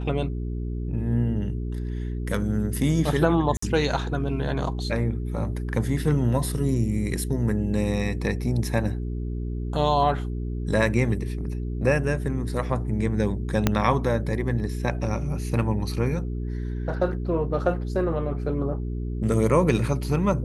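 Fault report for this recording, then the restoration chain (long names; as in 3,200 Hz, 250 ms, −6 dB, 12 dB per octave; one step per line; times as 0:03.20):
mains hum 60 Hz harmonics 7 −29 dBFS
0:03.57–0:03.62: drop-out 54 ms
0:13.67: click −5 dBFS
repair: click removal
hum removal 60 Hz, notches 7
repair the gap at 0:03.57, 54 ms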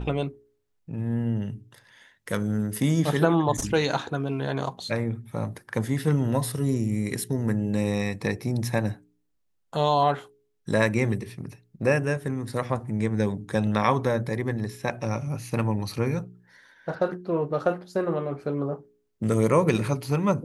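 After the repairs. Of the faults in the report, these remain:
0:13.67: click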